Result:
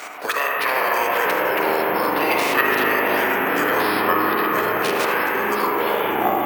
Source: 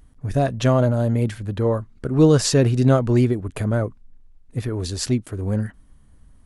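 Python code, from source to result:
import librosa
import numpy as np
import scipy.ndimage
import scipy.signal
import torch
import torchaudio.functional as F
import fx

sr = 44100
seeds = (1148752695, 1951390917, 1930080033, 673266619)

p1 = fx.spec_clip(x, sr, under_db=28)
p2 = scipy.signal.sosfilt(scipy.signal.butter(2, 950.0, 'highpass', fs=sr, output='sos'), p1)
p3 = fx.peak_eq(p2, sr, hz=3100.0, db=7.5, octaves=1.2)
p4 = fx.level_steps(p3, sr, step_db=13)
p5 = fx.echo_pitch(p4, sr, ms=218, semitones=-7, count=3, db_per_echo=-3.0)
p6 = p5 + fx.echo_single(p5, sr, ms=79, db=-12.0, dry=0)
p7 = fx.rev_spring(p6, sr, rt60_s=3.4, pass_ms=(38, 48), chirp_ms=20, drr_db=-4.0)
p8 = fx.formant_shift(p7, sr, semitones=-6)
p9 = np.repeat(scipy.signal.resample_poly(p8, 1, 3), 3)[:len(p8)]
y = fx.band_squash(p9, sr, depth_pct=70)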